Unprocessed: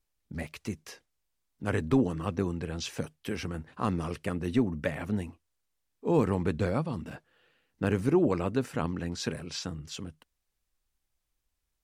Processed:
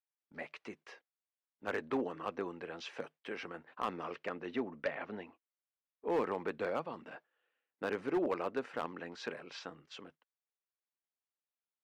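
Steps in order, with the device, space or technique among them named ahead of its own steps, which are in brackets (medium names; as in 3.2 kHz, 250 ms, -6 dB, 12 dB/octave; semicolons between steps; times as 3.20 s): walkie-talkie (band-pass 480–2600 Hz; hard clipper -25 dBFS, distortion -17 dB; gate -57 dBFS, range -11 dB); 3.97–6.08 s: low-pass 8.4 kHz -> 3.6 kHz 24 dB/octave; trim -1.5 dB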